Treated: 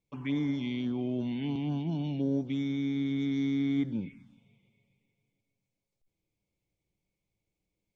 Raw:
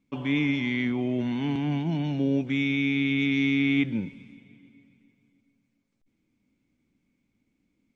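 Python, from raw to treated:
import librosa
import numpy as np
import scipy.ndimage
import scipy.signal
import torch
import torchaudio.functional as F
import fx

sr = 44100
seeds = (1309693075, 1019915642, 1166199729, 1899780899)

y = fx.env_phaser(x, sr, low_hz=250.0, high_hz=2600.0, full_db=-22.0)
y = F.gain(torch.from_numpy(y), -4.5).numpy()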